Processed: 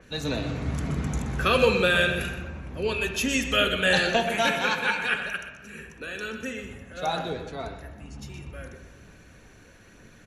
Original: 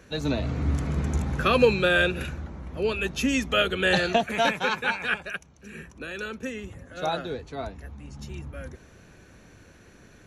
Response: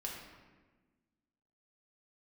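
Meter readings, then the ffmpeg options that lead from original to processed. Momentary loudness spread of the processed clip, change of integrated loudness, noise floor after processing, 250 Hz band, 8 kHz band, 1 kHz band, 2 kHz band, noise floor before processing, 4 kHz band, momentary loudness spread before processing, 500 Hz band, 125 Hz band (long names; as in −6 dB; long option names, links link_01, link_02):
20 LU, 0.0 dB, −52 dBFS, −1.5 dB, +4.0 dB, 0.0 dB, +1.5 dB, −53 dBFS, +2.5 dB, 19 LU, −1.0 dB, −1.5 dB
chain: -filter_complex "[0:a]highshelf=frequency=2300:gain=8.5,aphaser=in_gain=1:out_gain=1:delay=2.9:decay=0.24:speed=1.1:type=triangular,aecho=1:1:125:0.237,asplit=2[link_01][link_02];[1:a]atrim=start_sample=2205,lowpass=3400[link_03];[link_02][link_03]afir=irnorm=-1:irlink=0,volume=0dB[link_04];[link_01][link_04]amix=inputs=2:normalize=0,adynamicequalizer=threshold=0.0224:dfrequency=4700:dqfactor=0.7:tfrequency=4700:tqfactor=0.7:attack=5:release=100:ratio=0.375:range=2:mode=boostabove:tftype=highshelf,volume=-6.5dB"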